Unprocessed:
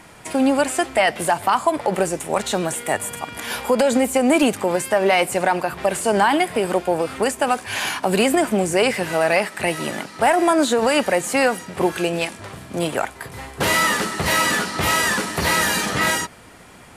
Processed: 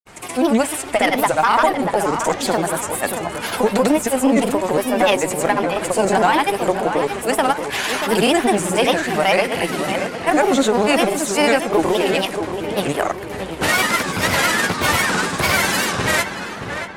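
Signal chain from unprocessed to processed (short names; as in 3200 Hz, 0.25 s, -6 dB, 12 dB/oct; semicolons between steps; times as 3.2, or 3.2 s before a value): notches 60/120/180 Hz; in parallel at -3 dB: one-sided clip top -24.5 dBFS; on the sum: short-mantissa float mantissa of 6-bit; grains, pitch spread up and down by 3 st; on a send: darkening echo 0.629 s, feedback 49%, low-pass 2900 Hz, level -7.5 dB; on the sum: record warp 78 rpm, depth 160 cents; gain -1 dB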